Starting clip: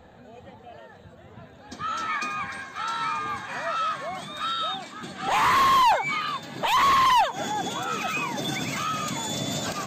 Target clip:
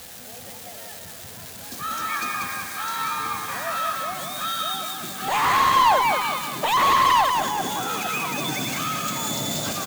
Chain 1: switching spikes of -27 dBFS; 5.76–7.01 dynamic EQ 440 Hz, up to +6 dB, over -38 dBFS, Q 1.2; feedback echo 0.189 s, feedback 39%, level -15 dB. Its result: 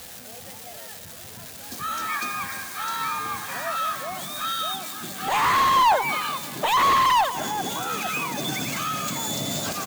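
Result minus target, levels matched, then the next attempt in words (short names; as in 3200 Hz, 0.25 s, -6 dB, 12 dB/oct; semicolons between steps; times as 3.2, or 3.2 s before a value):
echo-to-direct -10.5 dB
switching spikes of -27 dBFS; 5.76–7.01 dynamic EQ 440 Hz, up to +6 dB, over -38 dBFS, Q 1.2; feedback echo 0.189 s, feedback 39%, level -4.5 dB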